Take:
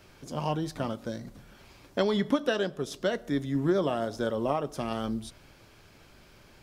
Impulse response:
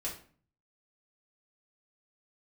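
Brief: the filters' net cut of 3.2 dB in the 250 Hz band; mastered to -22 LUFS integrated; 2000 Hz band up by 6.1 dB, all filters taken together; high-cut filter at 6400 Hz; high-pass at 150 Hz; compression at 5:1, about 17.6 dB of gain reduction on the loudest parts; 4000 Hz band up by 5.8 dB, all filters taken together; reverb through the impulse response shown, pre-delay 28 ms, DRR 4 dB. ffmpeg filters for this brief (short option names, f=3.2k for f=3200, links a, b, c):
-filter_complex "[0:a]highpass=150,lowpass=6.4k,equalizer=f=250:t=o:g=-3.5,equalizer=f=2k:t=o:g=7.5,equalizer=f=4k:t=o:g=5,acompressor=threshold=-42dB:ratio=5,asplit=2[a][b];[1:a]atrim=start_sample=2205,adelay=28[c];[b][c]afir=irnorm=-1:irlink=0,volume=-5.5dB[d];[a][d]amix=inputs=2:normalize=0,volume=22dB"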